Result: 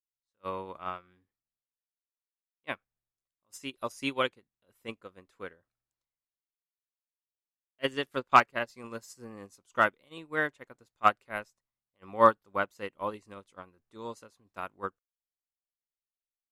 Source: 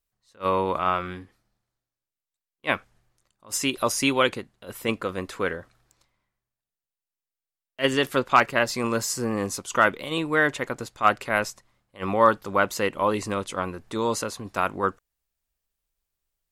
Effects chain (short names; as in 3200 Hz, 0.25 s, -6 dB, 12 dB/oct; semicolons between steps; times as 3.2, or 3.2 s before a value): upward expander 2.5:1, over -33 dBFS